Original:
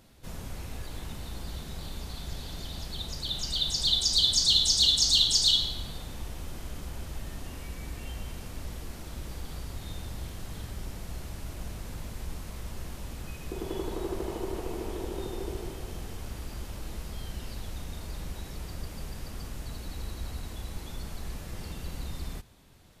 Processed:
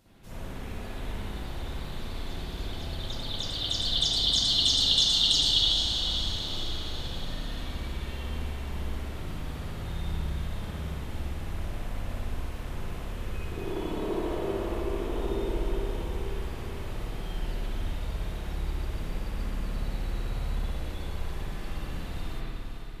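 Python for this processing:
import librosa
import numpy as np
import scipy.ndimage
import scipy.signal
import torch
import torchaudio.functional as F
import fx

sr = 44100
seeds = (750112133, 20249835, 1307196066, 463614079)

y = fx.echo_diffused(x, sr, ms=462, feedback_pct=53, wet_db=-7)
y = fx.rev_spring(y, sr, rt60_s=1.5, pass_ms=(58,), chirp_ms=60, drr_db=-9.5)
y = y * 10.0 ** (-6.5 / 20.0)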